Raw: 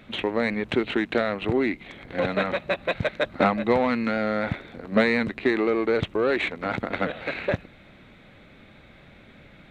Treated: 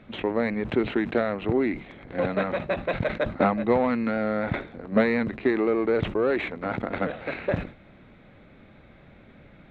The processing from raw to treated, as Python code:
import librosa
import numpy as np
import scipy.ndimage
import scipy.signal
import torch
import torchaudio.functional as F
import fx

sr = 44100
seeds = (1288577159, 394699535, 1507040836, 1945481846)

y = fx.lowpass(x, sr, hz=1400.0, slope=6)
y = fx.sustainer(y, sr, db_per_s=140.0)